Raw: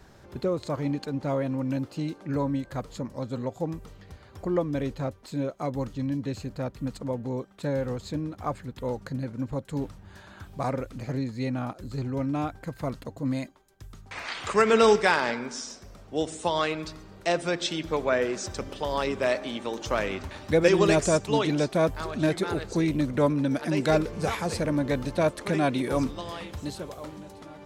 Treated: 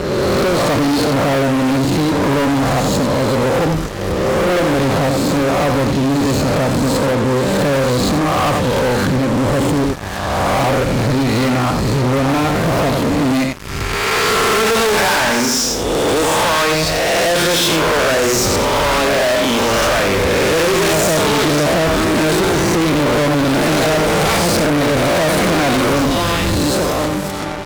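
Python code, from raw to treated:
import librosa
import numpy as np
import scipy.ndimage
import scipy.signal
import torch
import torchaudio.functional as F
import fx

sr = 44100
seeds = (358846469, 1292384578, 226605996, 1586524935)

p1 = fx.spec_swells(x, sr, rise_s=1.4)
p2 = p1 + fx.echo_single(p1, sr, ms=88, db=-8.5, dry=0)
y = fx.fuzz(p2, sr, gain_db=37.0, gate_db=-45.0)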